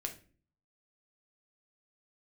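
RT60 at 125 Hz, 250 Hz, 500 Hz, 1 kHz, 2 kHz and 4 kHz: 0.75, 0.65, 0.45, 0.35, 0.35, 0.30 seconds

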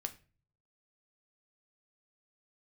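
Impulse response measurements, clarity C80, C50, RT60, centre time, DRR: 21.5 dB, 16.0 dB, 0.35 s, 5 ms, 7.0 dB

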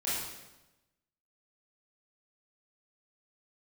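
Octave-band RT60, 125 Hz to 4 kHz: 1.2, 1.1, 1.1, 1.0, 0.95, 0.90 seconds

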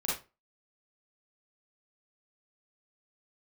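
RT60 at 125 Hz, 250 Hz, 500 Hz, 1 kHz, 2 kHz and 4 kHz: 0.35, 0.30, 0.30, 0.30, 0.25, 0.20 seconds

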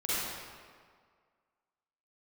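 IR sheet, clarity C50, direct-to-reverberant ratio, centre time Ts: −7.0 dB, −11.0 dB, 148 ms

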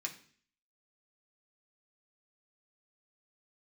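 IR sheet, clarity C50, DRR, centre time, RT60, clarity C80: 12.5 dB, −0.5 dB, 11 ms, 0.50 s, 16.0 dB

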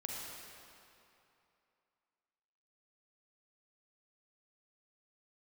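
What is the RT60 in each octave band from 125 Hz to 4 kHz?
2.7, 2.6, 2.7, 2.9, 2.5, 2.1 seconds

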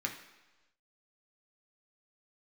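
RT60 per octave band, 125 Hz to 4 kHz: 1.0, 1.0, 1.1, 1.1, 1.1, 1.2 seconds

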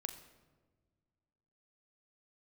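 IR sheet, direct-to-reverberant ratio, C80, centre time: 7.0 dB, 12.0 dB, 14 ms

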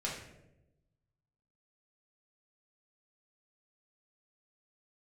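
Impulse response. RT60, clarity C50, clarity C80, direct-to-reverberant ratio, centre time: 0.95 s, 3.5 dB, 7.0 dB, −5.0 dB, 43 ms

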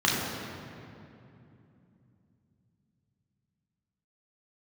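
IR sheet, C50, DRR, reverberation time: 0.0 dB, −5.0 dB, 2.8 s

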